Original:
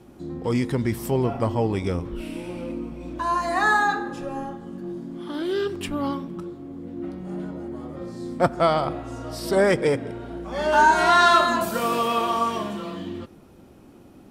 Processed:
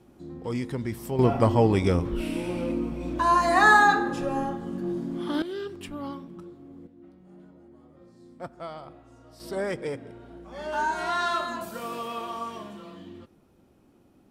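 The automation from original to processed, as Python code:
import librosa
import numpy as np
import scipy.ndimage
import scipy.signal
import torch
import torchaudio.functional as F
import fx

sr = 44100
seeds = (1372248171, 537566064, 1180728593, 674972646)

y = fx.gain(x, sr, db=fx.steps((0.0, -7.0), (1.19, 3.0), (5.42, -9.0), (6.87, -18.5), (9.4, -11.0)))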